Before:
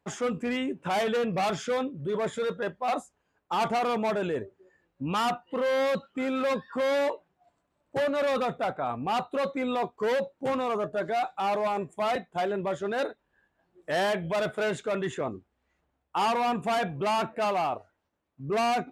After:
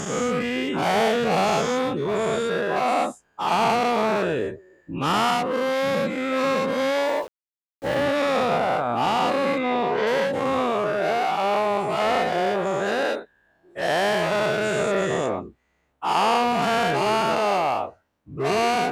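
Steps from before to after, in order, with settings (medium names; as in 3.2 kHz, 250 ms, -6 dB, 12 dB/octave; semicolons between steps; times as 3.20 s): every event in the spectrogram widened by 240 ms; 7.06–8.03 s: small samples zeroed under -40 dBFS; 9.58–10.07 s: low-pass 4.5 kHz 12 dB/octave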